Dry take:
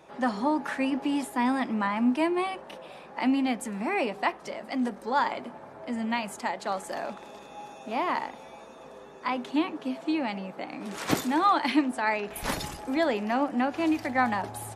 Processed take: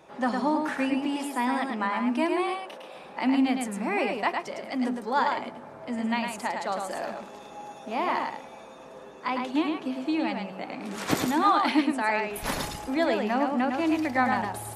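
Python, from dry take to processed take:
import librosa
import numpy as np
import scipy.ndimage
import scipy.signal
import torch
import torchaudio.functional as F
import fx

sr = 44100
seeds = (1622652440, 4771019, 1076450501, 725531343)

y = fx.highpass(x, sr, hz=260.0, slope=12, at=(1.05, 2.97))
y = y + 10.0 ** (-4.5 / 20.0) * np.pad(y, (int(107 * sr / 1000.0), 0))[:len(y)]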